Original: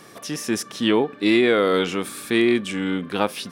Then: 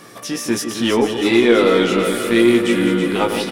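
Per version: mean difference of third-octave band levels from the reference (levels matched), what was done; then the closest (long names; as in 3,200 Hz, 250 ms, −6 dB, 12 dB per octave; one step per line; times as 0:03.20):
5.5 dB: feedback delay that plays each chunk backwards 164 ms, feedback 73%, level −10 dB
in parallel at −6 dB: soft clipping −22 dBFS, distortion −7 dB
on the sum: double-tracking delay 17 ms −5 dB
delay that swaps between a low-pass and a high-pass 163 ms, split 880 Hz, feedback 81%, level −8 dB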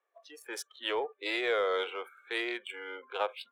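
11.0 dB: adaptive Wiener filter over 9 samples
noise reduction from a noise print of the clip's start 26 dB
Butterworth high-pass 450 Hz 36 dB per octave
in parallel at −11.5 dB: soft clipping −25.5 dBFS, distortion −8 dB
on the sum: level −9 dB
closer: first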